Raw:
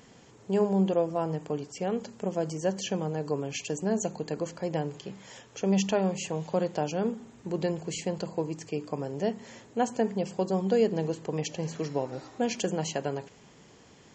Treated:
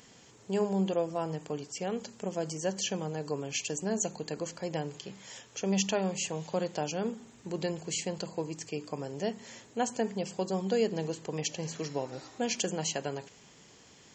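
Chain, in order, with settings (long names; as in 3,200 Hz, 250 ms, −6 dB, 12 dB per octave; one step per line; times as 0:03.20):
high-shelf EQ 2,100 Hz +9 dB
level −4.5 dB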